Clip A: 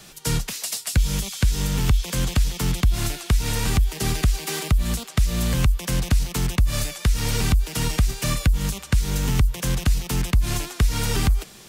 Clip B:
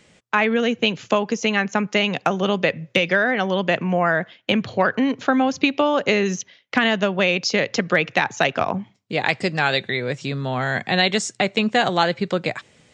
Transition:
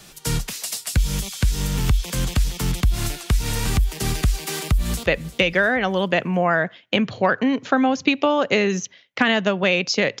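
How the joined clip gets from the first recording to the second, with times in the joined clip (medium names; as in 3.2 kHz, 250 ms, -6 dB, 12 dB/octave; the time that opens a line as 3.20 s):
clip A
4.54–5.06 s: echo throw 350 ms, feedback 45%, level -15.5 dB
5.06 s: go over to clip B from 2.62 s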